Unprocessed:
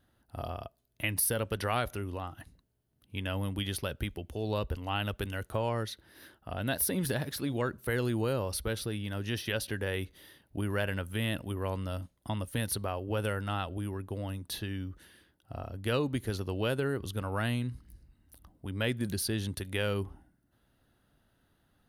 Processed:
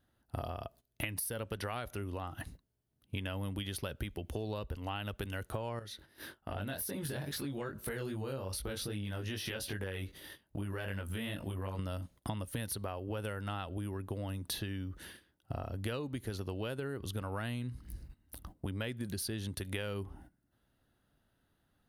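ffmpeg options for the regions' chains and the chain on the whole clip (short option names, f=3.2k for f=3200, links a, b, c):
-filter_complex "[0:a]asettb=1/sr,asplit=3[a][b][c];[a]atrim=end=5.794[d];[b]atrim=start=5.79:end=11.79,asetpts=PTS-STARTPTS,afade=t=in:d=0.004:c=qsin,afade=t=out:st=5.996:d=0.004:c=qsin,acompressor=threshold=-40dB:ratio=2.5:attack=3.2:release=140:knee=1:detection=peak,flanger=delay=19.5:depth=3:speed=2.5[e];[c]atrim=start=11.786[f];[d][e]acrossfade=d=0.004:c1=hsin:c2=qsin[g];[g][f]acrossfade=d=0.004:c1=qsin:c2=hsin,agate=range=-14dB:threshold=-57dB:ratio=16:detection=peak,acompressor=threshold=-44dB:ratio=12,volume=9dB"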